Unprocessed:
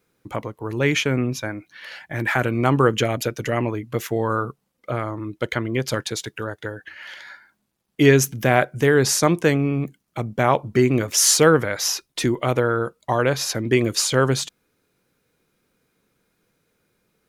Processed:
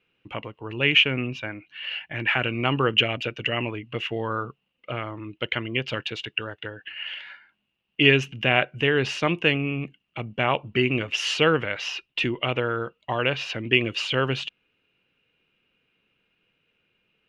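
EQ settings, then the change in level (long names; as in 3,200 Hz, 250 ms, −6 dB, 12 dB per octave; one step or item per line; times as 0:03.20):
low-pass with resonance 2,800 Hz, resonance Q 16
−6.5 dB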